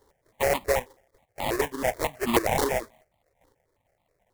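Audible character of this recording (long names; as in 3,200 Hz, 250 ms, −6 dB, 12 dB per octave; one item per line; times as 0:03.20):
a buzz of ramps at a fixed pitch in blocks of 8 samples
chopped level 0.88 Hz, depth 65%, duty 10%
aliases and images of a low sample rate 1,400 Hz, jitter 20%
notches that jump at a steady rate 9.3 Hz 670–1,600 Hz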